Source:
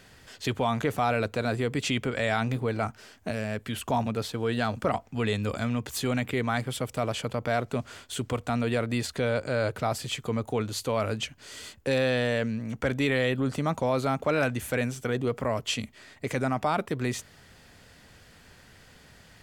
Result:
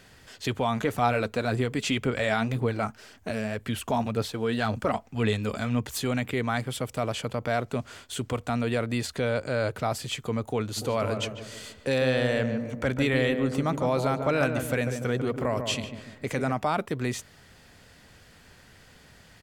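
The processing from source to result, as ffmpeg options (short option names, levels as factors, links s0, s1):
-filter_complex "[0:a]asplit=3[s0][s1][s2];[s0]afade=t=out:st=0.75:d=0.02[s3];[s1]aphaser=in_gain=1:out_gain=1:delay=4.9:decay=0.35:speed=1.9:type=sinusoidal,afade=t=in:st=0.75:d=0.02,afade=t=out:st=5.97:d=0.02[s4];[s2]afade=t=in:st=5.97:d=0.02[s5];[s3][s4][s5]amix=inputs=3:normalize=0,asplit=3[s6][s7][s8];[s6]afade=t=out:st=10.76:d=0.02[s9];[s7]asplit=2[s10][s11];[s11]adelay=146,lowpass=f=1200:p=1,volume=0.531,asplit=2[s12][s13];[s13]adelay=146,lowpass=f=1200:p=1,volume=0.51,asplit=2[s14][s15];[s15]adelay=146,lowpass=f=1200:p=1,volume=0.51,asplit=2[s16][s17];[s17]adelay=146,lowpass=f=1200:p=1,volume=0.51,asplit=2[s18][s19];[s19]adelay=146,lowpass=f=1200:p=1,volume=0.51,asplit=2[s20][s21];[s21]adelay=146,lowpass=f=1200:p=1,volume=0.51[s22];[s10][s12][s14][s16][s18][s20][s22]amix=inputs=7:normalize=0,afade=t=in:st=10.76:d=0.02,afade=t=out:st=16.51:d=0.02[s23];[s8]afade=t=in:st=16.51:d=0.02[s24];[s9][s23][s24]amix=inputs=3:normalize=0"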